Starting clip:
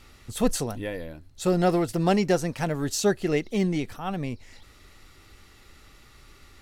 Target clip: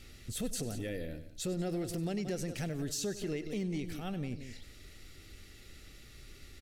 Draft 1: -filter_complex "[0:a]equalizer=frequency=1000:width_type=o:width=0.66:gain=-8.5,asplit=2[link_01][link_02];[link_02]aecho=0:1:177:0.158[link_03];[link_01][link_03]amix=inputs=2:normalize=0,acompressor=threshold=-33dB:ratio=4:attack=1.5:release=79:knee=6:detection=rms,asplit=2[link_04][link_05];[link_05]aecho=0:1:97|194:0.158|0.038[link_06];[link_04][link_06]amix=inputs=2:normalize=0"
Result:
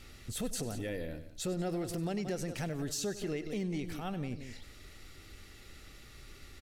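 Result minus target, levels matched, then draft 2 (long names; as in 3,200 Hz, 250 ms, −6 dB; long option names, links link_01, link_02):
1,000 Hz band +3.5 dB
-filter_complex "[0:a]equalizer=frequency=1000:width_type=o:width=0.66:gain=-19,asplit=2[link_01][link_02];[link_02]aecho=0:1:177:0.158[link_03];[link_01][link_03]amix=inputs=2:normalize=0,acompressor=threshold=-33dB:ratio=4:attack=1.5:release=79:knee=6:detection=rms,asplit=2[link_04][link_05];[link_05]aecho=0:1:97|194:0.158|0.038[link_06];[link_04][link_06]amix=inputs=2:normalize=0"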